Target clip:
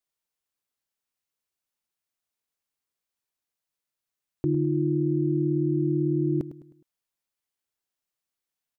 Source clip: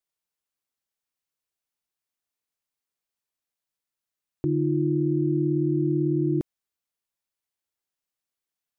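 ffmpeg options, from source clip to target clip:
-af "aecho=1:1:104|208|312|416:0.224|0.0918|0.0376|0.0154"

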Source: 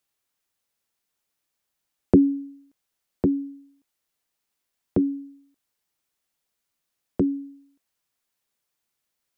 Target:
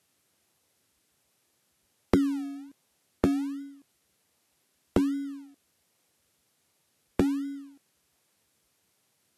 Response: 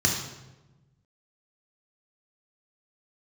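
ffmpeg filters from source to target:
-filter_complex "[0:a]asplit=2[a][b];[b]acrusher=samples=35:mix=1:aa=0.000001:lfo=1:lforange=21:lforate=1.3,volume=-9.5dB[c];[a][c]amix=inputs=2:normalize=0,acompressor=threshold=-34dB:ratio=4,volume=9dB" -ar 32000 -c:a libvorbis -b:a 48k

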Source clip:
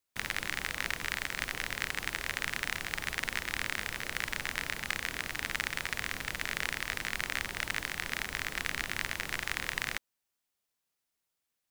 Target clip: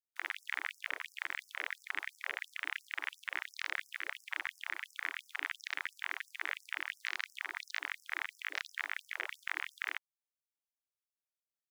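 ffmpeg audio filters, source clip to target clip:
-af "afwtdn=0.0112,alimiter=limit=-18.5dB:level=0:latency=1:release=36,afftfilt=real='re*gte(b*sr/1024,270*pow(5200/270,0.5+0.5*sin(2*PI*2.9*pts/sr)))':imag='im*gte(b*sr/1024,270*pow(5200/270,0.5+0.5*sin(2*PI*2.9*pts/sr)))':win_size=1024:overlap=0.75"

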